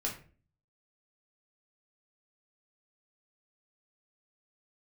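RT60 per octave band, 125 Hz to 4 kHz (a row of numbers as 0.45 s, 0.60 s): 0.70 s, 0.60 s, 0.45 s, 0.35 s, 0.35 s, 0.30 s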